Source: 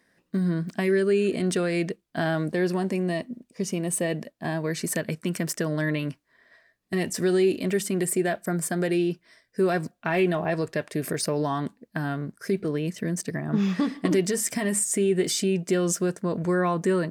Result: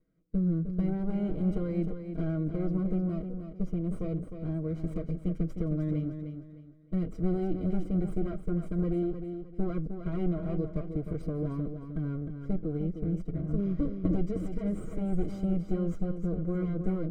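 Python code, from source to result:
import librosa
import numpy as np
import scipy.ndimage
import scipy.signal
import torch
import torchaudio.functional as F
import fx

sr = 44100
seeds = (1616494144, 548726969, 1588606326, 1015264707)

y = fx.lower_of_two(x, sr, delay_ms=6.3)
y = np.convolve(y, np.full(50, 1.0 / 50))[:len(y)]
y = fx.low_shelf(y, sr, hz=73.0, db=9.0)
y = fx.echo_feedback(y, sr, ms=308, feedback_pct=30, wet_db=-8)
y = F.gain(torch.from_numpy(y), -3.0).numpy()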